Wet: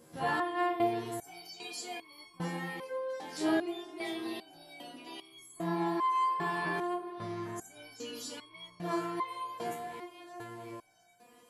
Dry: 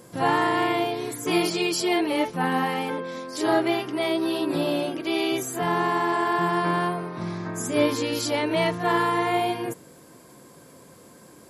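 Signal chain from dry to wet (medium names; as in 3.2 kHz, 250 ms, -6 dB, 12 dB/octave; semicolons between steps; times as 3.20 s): echo whose repeats swap between lows and highs 342 ms, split 1.2 kHz, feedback 77%, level -11.5 dB; resonator arpeggio 2.5 Hz 79–1100 Hz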